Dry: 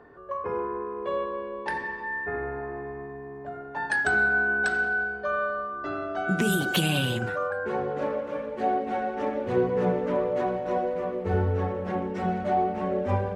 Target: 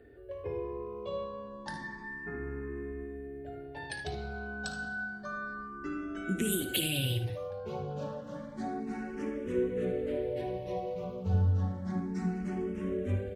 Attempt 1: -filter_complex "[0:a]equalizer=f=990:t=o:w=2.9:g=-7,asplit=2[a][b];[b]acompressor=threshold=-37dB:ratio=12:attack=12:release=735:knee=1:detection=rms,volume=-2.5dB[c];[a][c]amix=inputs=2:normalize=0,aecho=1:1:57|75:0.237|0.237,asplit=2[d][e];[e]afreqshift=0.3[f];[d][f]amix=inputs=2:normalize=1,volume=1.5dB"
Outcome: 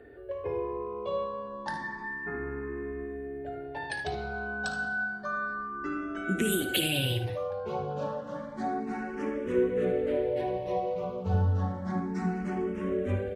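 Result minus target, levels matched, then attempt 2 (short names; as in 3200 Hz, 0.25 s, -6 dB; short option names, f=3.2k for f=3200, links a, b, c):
1000 Hz band +4.0 dB
-filter_complex "[0:a]equalizer=f=990:t=o:w=2.9:g=-16.5,asplit=2[a][b];[b]acompressor=threshold=-37dB:ratio=12:attack=12:release=735:knee=1:detection=rms,volume=-2.5dB[c];[a][c]amix=inputs=2:normalize=0,aecho=1:1:57|75:0.237|0.237,asplit=2[d][e];[e]afreqshift=0.3[f];[d][f]amix=inputs=2:normalize=1,volume=1.5dB"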